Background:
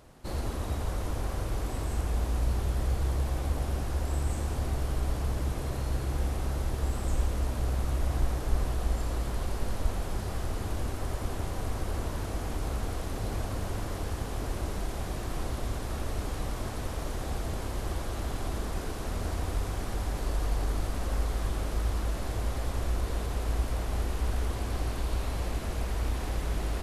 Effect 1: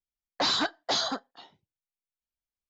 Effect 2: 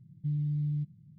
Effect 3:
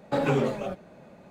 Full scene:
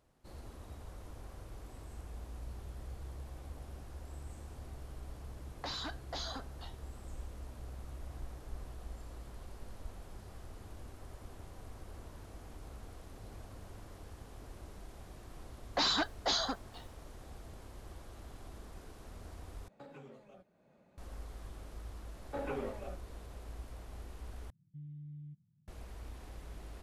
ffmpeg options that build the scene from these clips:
-filter_complex "[1:a]asplit=2[s0][s1];[3:a]asplit=2[s2][s3];[0:a]volume=0.141[s4];[s0]acompressor=threshold=0.0158:ratio=6:attack=3.2:release=140:knee=1:detection=peak[s5];[s1]acrusher=bits=10:mix=0:aa=0.000001[s6];[s2]acompressor=threshold=0.00501:ratio=2:attack=55:release=308:knee=1:detection=rms[s7];[s3]highpass=250,lowpass=2700[s8];[2:a]aresample=8000,aresample=44100[s9];[s4]asplit=3[s10][s11][s12];[s10]atrim=end=19.684[s13];[s7]atrim=end=1.3,asetpts=PTS-STARTPTS,volume=0.158[s14];[s11]atrim=start=20.976:end=24.504[s15];[s9]atrim=end=1.18,asetpts=PTS-STARTPTS,volume=0.141[s16];[s12]atrim=start=25.676[s17];[s5]atrim=end=2.69,asetpts=PTS-STARTPTS,volume=0.708,afade=t=in:d=0.004:c=hsin,afade=t=out:st=2.686:d=0.004:c=hsin,adelay=5240[s18];[s6]atrim=end=2.69,asetpts=PTS-STARTPTS,volume=0.596,afade=t=in:d=0.004:c=hsin,afade=t=out:st=2.686:d=0.004:c=hsin,adelay=15370[s19];[s8]atrim=end=1.3,asetpts=PTS-STARTPTS,volume=0.224,afade=t=in:d=0.004:c=hsin,afade=t=out:st=1.296:d=0.004:c=hsin,adelay=22210[s20];[s13][s14]acrossfade=d=0.004:c1=hsin:c2=hsin[s21];[s21][s15]acrossfade=d=0.004:c1=hsin:c2=hsin[s22];[s22][s16]acrossfade=d=0.004:c1=hsin:c2=hsin[s23];[s23][s17]acrossfade=d=0.004:c1=hsin:c2=hsin[s24];[s24][s18][s19][s20]amix=inputs=4:normalize=0"

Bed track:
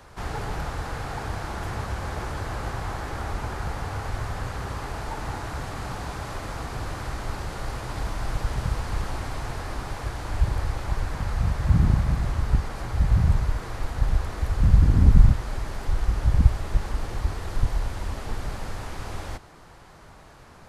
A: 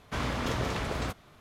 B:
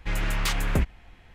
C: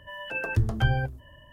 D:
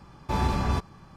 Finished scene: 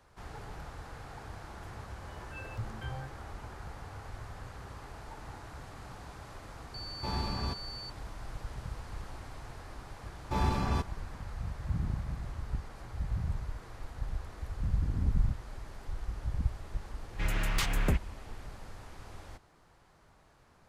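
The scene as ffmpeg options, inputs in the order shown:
-filter_complex "[4:a]asplit=2[s0][s1];[0:a]volume=0.2[s2];[3:a]asplit=2[s3][s4];[s4]afreqshift=2.4[s5];[s3][s5]amix=inputs=2:normalize=1[s6];[s0]aeval=exprs='val(0)+0.0251*sin(2*PI*4500*n/s)':c=same[s7];[s6]atrim=end=1.52,asetpts=PTS-STARTPTS,volume=0.2,afade=t=in:d=0.004:c=hsin,afade=t=out:st=1.516:d=0.004:c=hsin,adelay=2010[s8];[s7]atrim=end=1.16,asetpts=PTS-STARTPTS,volume=0.335,afade=t=in:d=0.004:c=hsin,afade=t=out:st=1.156:d=0.004:c=hsin,adelay=297234S[s9];[s1]atrim=end=1.16,asetpts=PTS-STARTPTS,volume=0.596,afade=t=in:d=0.004:c=hsin,afade=t=out:st=1.156:d=0.004:c=hsin,adelay=441882S[s10];[2:a]atrim=end=1.34,asetpts=PTS-STARTPTS,volume=0.596,afade=t=in:d=0.004:c=hsin,afade=t=out:st=1.336:d=0.004:c=hsin,adelay=17130[s11];[s2][s8][s9][s10][s11]amix=inputs=5:normalize=0"

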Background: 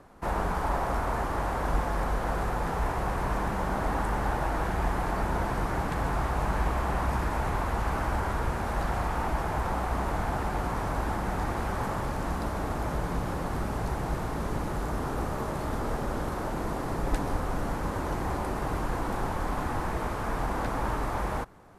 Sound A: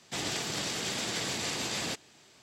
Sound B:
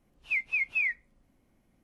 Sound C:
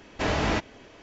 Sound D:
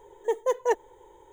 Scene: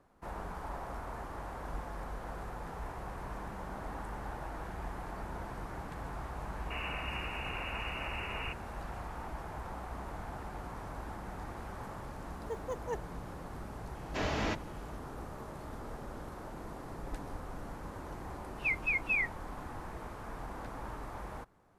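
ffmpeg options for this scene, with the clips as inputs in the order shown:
-filter_complex "[0:a]volume=0.224[s0];[1:a]lowpass=f=2600:t=q:w=0.5098,lowpass=f=2600:t=q:w=0.6013,lowpass=f=2600:t=q:w=0.9,lowpass=f=2600:t=q:w=2.563,afreqshift=-3000,atrim=end=2.42,asetpts=PTS-STARTPTS,volume=0.631,afade=t=in:d=0.004:c=hsin,afade=t=out:st=2.416:d=0.004:c=hsin,adelay=290178S[s1];[4:a]atrim=end=1.32,asetpts=PTS-STARTPTS,volume=0.2,afade=t=in:d=0.004:c=hsin,afade=t=out:st=1.316:d=0.004:c=hsin,adelay=12220[s2];[3:a]atrim=end=1.02,asetpts=PTS-STARTPTS,volume=0.398,afade=t=in:d=0.004:c=hsin,afade=t=out:st=1.016:d=0.004:c=hsin,adelay=13950[s3];[2:a]atrim=end=1.83,asetpts=PTS-STARTPTS,volume=0.708,afade=t=in:d=0.004:c=hsin,afade=t=out:st=1.826:d=0.004:c=hsin,adelay=18340[s4];[s0][s1][s2][s3][s4]amix=inputs=5:normalize=0"

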